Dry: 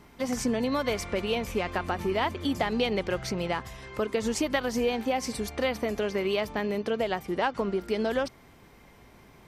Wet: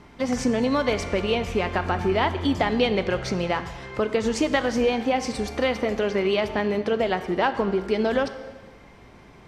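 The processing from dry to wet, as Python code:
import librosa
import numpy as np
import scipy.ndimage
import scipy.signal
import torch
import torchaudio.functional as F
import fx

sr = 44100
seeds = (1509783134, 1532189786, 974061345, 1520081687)

y = fx.air_absorb(x, sr, metres=65.0)
y = fx.rev_plate(y, sr, seeds[0], rt60_s=1.4, hf_ratio=0.9, predelay_ms=0, drr_db=10.0)
y = y * librosa.db_to_amplitude(5.0)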